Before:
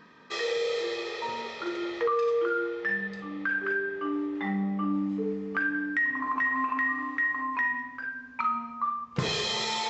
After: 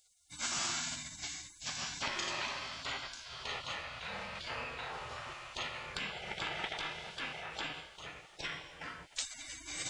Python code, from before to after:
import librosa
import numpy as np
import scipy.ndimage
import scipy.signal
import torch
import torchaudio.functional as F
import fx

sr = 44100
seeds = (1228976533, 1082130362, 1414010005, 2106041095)

y = fx.spec_gate(x, sr, threshold_db=-30, keep='weak')
y = fx.formant_shift(y, sr, semitones=5)
y = y * librosa.db_to_amplitude(10.5)